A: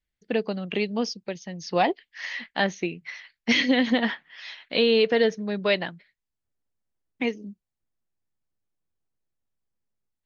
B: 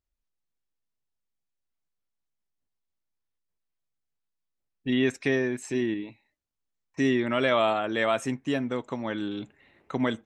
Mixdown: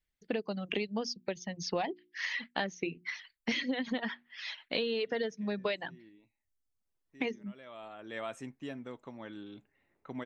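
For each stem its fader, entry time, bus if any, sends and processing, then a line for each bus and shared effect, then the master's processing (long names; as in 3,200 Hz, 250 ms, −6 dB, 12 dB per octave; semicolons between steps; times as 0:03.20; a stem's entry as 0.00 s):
0.0 dB, 0.00 s, no send, mains-hum notches 60/120/180/240/300/360 Hz; reverb reduction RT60 0.78 s
−14.0 dB, 0.15 s, no send, low-pass that shuts in the quiet parts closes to 2,200 Hz, open at −23 dBFS; automatic ducking −17 dB, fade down 0.80 s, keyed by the first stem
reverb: not used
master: downward compressor 8 to 1, threshold −30 dBFS, peak gain reduction 13.5 dB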